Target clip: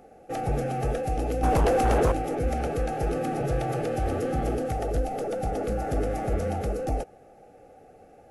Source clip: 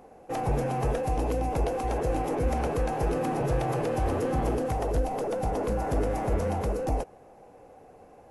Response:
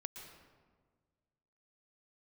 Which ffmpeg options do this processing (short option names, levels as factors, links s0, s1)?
-filter_complex "[0:a]asuperstop=centerf=1000:order=8:qfactor=3.8,asettb=1/sr,asplit=3[s0][s1][s2];[s0]atrim=end=1.434[s3];[s1]atrim=start=1.43:end=2.12,asetpts=PTS-STARTPTS,afade=t=in:d=0.004:c=qsin,afade=t=out:st=0.686:d=0.004:c=qsin,aeval=exprs='0.141*sin(PI/2*2*val(0)/0.141)':c=same[s4];[s2]atrim=start=2.116[s5];[s3][s4]acrossfade=d=0.004:c1=hsin:c2=qsin[s6];[s6][s5]acrossfade=d=0.004:c1=qsin:c2=hsin"